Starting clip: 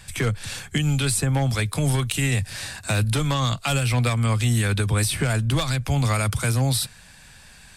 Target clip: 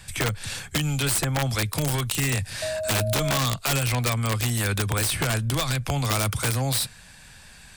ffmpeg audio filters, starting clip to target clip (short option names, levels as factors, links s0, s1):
-filter_complex "[0:a]asettb=1/sr,asplit=3[s0][s1][s2];[s0]atrim=end=2.624[s3];[s1]atrim=start=2.62:end=3.38,asetpts=PTS-STARTPTS,afade=t=in:d=0.004:c=qsin,afade=t=out:st=0.756:d=0.004:c=qsin,aeval=exprs='val(0)+0.0501*sin(2*PI*630*n/s)':c=same[s4];[s2]atrim=start=3.376[s5];[s3][s4]acrossfade=d=0.004:c1=hsin:c2=qsin[s6];[s6][s5]acrossfade=d=0.004:c1=qsin:c2=hsin,acrossover=split=420|3000[s7][s8][s9];[s7]acompressor=threshold=0.0708:ratio=10[s10];[s10][s8][s9]amix=inputs=3:normalize=0,aeval=exprs='(mod(6.31*val(0)+1,2)-1)/6.31':c=same"